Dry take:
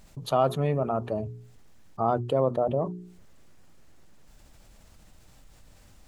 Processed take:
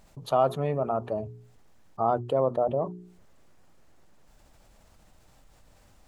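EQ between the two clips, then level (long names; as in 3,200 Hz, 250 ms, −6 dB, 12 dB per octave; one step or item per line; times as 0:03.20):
parametric band 770 Hz +5.5 dB 2 octaves
−4.5 dB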